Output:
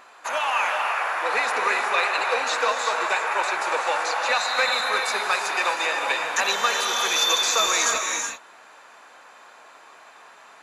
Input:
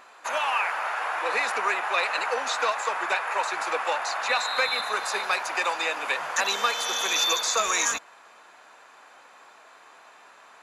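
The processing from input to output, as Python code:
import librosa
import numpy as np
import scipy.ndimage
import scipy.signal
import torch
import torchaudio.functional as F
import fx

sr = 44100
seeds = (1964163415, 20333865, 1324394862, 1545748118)

y = fx.rev_gated(x, sr, seeds[0], gate_ms=410, shape='rising', drr_db=3.0)
y = F.gain(torch.from_numpy(y), 1.5).numpy()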